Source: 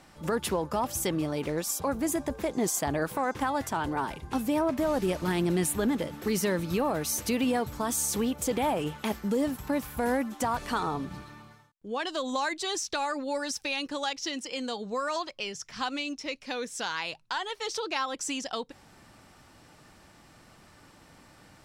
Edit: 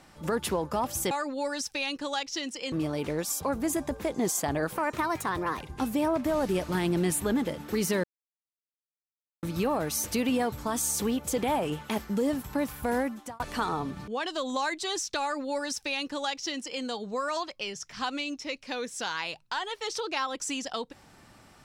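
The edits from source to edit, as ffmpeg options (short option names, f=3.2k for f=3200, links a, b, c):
-filter_complex "[0:a]asplit=8[a][b][c][d][e][f][g][h];[a]atrim=end=1.112[i];[b]atrim=start=13.008:end=14.622[j];[c]atrim=start=1.108:end=3.164[k];[d]atrim=start=3.16:end=4.14,asetpts=PTS-STARTPTS,asetrate=51597,aresample=44100,atrim=end_sample=36938,asetpts=PTS-STARTPTS[l];[e]atrim=start=4.136:end=6.57,asetpts=PTS-STARTPTS,afade=t=out:st=2.43:d=0.004:c=hsin,apad=pad_dur=1.39[m];[f]atrim=start=6.57:end=10.54,asetpts=PTS-STARTPTS,afade=t=in:d=0.004:c=hsin,afade=t=out:st=3.42:d=0.55:c=qsin[n];[g]atrim=start=10.54:end=11.222,asetpts=PTS-STARTPTS,afade=t=in:d=0.004:c=hsin[o];[h]atrim=start=11.868[p];[i][j]acrossfade=d=0.004:c1=hsin:c2=hsin[q];[q][k]acrossfade=d=0.004:c1=hsin:c2=hsin[r];[r][l]acrossfade=d=0.004:c1=hsin:c2=hsin[s];[m][n][o]concat=n=3:v=0:a=1[t];[s][t]acrossfade=d=0.004:c1=hsin:c2=hsin[u];[u][p]acrossfade=d=0.004:c1=hsin:c2=hsin"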